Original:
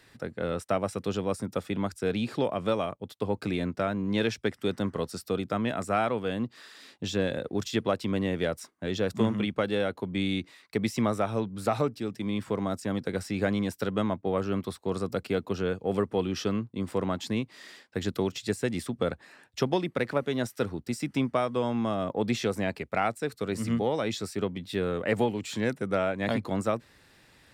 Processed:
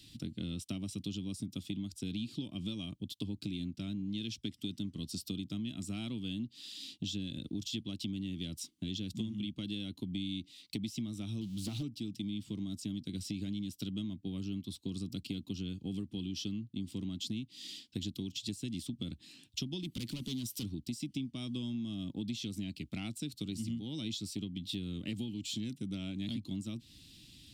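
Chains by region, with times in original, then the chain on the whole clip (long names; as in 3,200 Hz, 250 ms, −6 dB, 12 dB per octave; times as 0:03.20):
0:11.41–0:11.83: converter with a step at zero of −40 dBFS + highs frequency-modulated by the lows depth 0.31 ms
0:19.83–0:20.64: high-shelf EQ 8,400 Hz +11.5 dB + gain into a clipping stage and back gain 29 dB + upward compression, threshold −34 dBFS
whole clip: drawn EQ curve 310 Hz 0 dB, 460 Hz −25 dB, 1,700 Hz −25 dB, 3,100 Hz +4 dB, 9,700 Hz −1 dB; downward compressor, threshold −40 dBFS; level +4 dB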